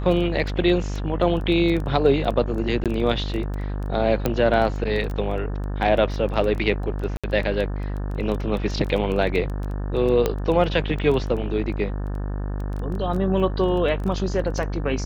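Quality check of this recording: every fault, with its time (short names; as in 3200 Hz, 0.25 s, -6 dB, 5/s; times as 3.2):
buzz 50 Hz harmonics 36 -27 dBFS
crackle 11/s -27 dBFS
2.84–2.86 gap 17 ms
4.26 pop -8 dBFS
7.17–7.24 gap 66 ms
10.26 pop -8 dBFS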